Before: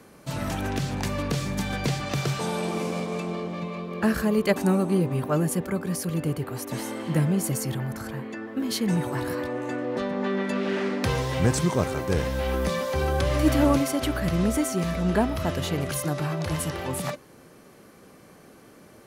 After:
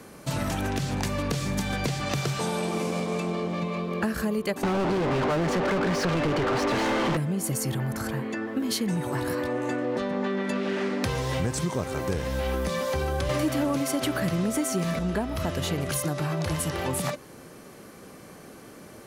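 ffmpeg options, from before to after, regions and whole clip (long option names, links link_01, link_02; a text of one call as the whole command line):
ffmpeg -i in.wav -filter_complex "[0:a]asettb=1/sr,asplit=3[link_01][link_02][link_03];[link_01]atrim=end=4.634[link_04];[link_02]atrim=start=4.63:end=7.17,asetpts=PTS-STARTPTS,afade=type=in:duration=0.004:curve=qsin,afade=type=out:start_time=2.536:duration=0.004:curve=qsin,lowpass=frequency=5300:width=0.5412,lowpass=frequency=5300:width=1.3066,asplit=2[link_05][link_06];[link_06]highpass=frequency=720:poles=1,volume=40dB,asoftclip=type=tanh:threshold=-12dB[link_07];[link_05][link_07]amix=inputs=2:normalize=0,lowpass=frequency=1600:poles=1,volume=-6dB[link_08];[link_03]atrim=start=7.166[link_09];[link_04][link_08]acrossfade=duration=0.004:curve1=hsin:curve2=qsin[link_10];[link_10][link_09]acrossfade=duration=0.004:curve1=qsin:curve2=hsin,asettb=1/sr,asplit=3[link_11][link_12][link_13];[link_11]atrim=end=13.294[link_14];[link_12]atrim=start=13.29:end=14.99,asetpts=PTS-STARTPTS,afade=type=in:duration=0.004:curve=qsin,afade=type=out:start_time=1.696:duration=0.004:curve=qsin,highpass=frequency=100:width=0.5412,highpass=frequency=100:width=1.3066,acontrast=84,acrusher=bits=8:mix=0:aa=0.5[link_15];[link_13]atrim=start=14.986[link_16];[link_14][link_15]acrossfade=duration=0.004:curve1=hsin:curve2=qsin[link_17];[link_17][link_16]acrossfade=duration=0.004:curve1=qsin:curve2=hsin,equalizer=frequency=7900:width_type=o:width=1.4:gain=2,acompressor=threshold=-29dB:ratio=6,volume=4.5dB" out.wav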